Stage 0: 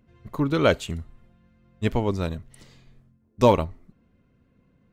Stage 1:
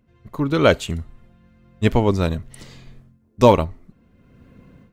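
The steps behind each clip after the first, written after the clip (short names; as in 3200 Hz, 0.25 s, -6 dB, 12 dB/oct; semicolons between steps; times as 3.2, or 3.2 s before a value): AGC gain up to 16.5 dB; gain -1 dB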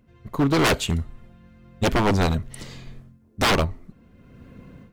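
wavefolder -16 dBFS; gain +3 dB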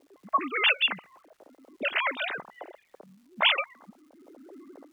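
sine-wave speech; auto-wah 490–2900 Hz, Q 2.7, up, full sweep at -18.5 dBFS; crackle 540/s -64 dBFS; gain +7 dB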